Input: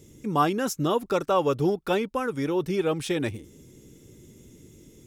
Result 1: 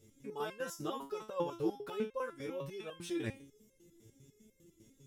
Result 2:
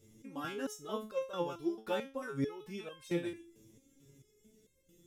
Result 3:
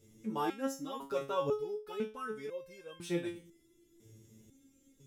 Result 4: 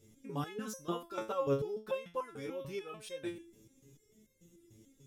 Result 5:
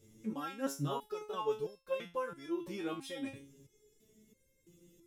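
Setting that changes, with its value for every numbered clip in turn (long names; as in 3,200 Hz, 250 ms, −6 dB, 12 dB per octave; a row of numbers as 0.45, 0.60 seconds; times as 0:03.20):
step-sequenced resonator, speed: 10, 4.5, 2, 6.8, 3 Hertz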